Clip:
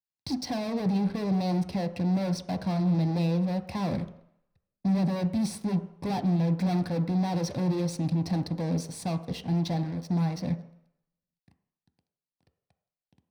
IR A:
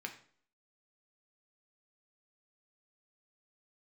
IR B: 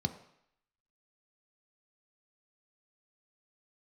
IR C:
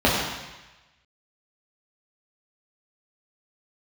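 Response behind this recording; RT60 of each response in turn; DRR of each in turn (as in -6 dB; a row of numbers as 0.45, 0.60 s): B; 0.50, 0.70, 1.1 s; 3.0, 7.0, -6.5 dB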